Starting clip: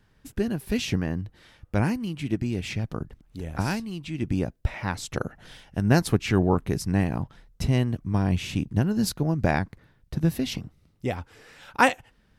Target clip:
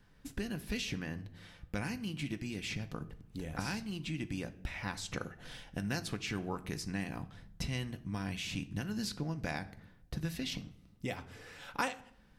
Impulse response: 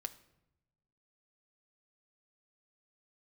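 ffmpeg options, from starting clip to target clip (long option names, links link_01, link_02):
-filter_complex "[0:a]acrossover=split=1500|3700|7700[link_01][link_02][link_03][link_04];[link_01]acompressor=threshold=-35dB:ratio=4[link_05];[link_02]acompressor=threshold=-40dB:ratio=4[link_06];[link_03]acompressor=threshold=-42dB:ratio=4[link_07];[link_04]acompressor=threshold=-56dB:ratio=4[link_08];[link_05][link_06][link_07][link_08]amix=inputs=4:normalize=0[link_09];[1:a]atrim=start_sample=2205,asetrate=57330,aresample=44100[link_10];[link_09][link_10]afir=irnorm=-1:irlink=0,volume=3dB"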